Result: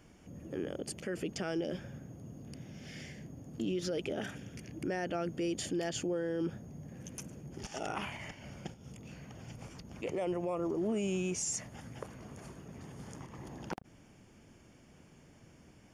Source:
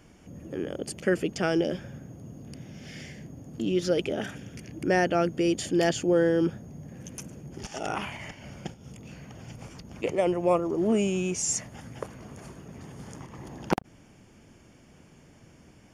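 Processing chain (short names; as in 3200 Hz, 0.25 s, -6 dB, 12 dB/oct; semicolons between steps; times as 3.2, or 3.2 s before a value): limiter -22 dBFS, peak gain reduction 11.5 dB; gain -4.5 dB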